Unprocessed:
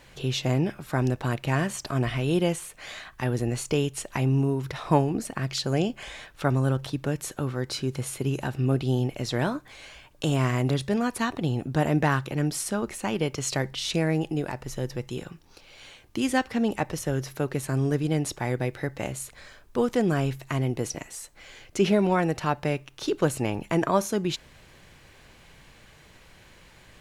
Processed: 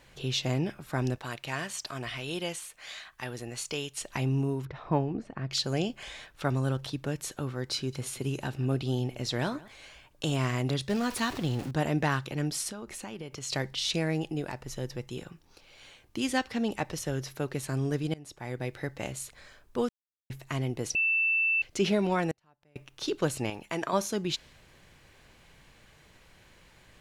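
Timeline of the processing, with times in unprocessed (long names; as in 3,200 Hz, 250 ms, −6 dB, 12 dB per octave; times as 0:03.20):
0:01.18–0:04.01: low-shelf EQ 490 Hz −10.5 dB
0:04.65–0:05.51: head-to-tape spacing loss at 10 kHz 29 dB
0:07.75–0:09.68: single-tap delay 176 ms −20.5 dB
0:10.89–0:11.71: converter with a step at zero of −33 dBFS
0:12.70–0:13.50: downward compressor 4 to 1, threshold −32 dBFS
0:18.14–0:18.76: fade in, from −23 dB
0:19.89–0:20.30: silence
0:20.95–0:21.62: beep over 2,660 Hz −21.5 dBFS
0:22.31–0:22.76: gate with flip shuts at −28 dBFS, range −34 dB
0:23.50–0:23.93: low-shelf EQ 340 Hz −10 dB
whole clip: dynamic equaliser 4,300 Hz, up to +6 dB, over −46 dBFS, Q 0.8; level −5 dB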